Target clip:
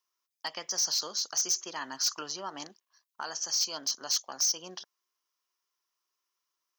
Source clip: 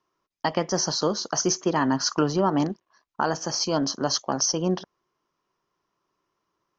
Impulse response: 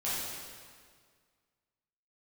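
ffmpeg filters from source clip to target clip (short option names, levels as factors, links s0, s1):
-af "aderivative,asoftclip=type=hard:threshold=0.0447,volume=1.5"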